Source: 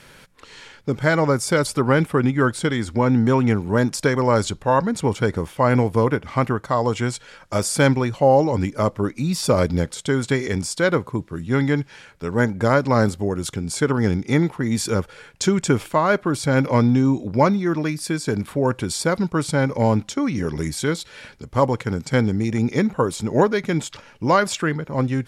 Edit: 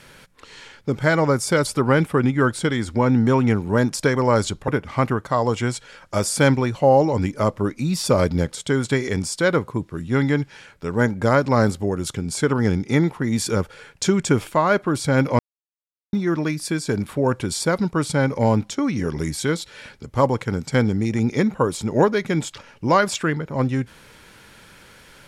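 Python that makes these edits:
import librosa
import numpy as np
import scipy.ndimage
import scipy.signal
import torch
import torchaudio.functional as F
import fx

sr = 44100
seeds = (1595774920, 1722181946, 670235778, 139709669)

y = fx.edit(x, sr, fx.cut(start_s=4.68, length_s=1.39),
    fx.silence(start_s=16.78, length_s=0.74), tone=tone)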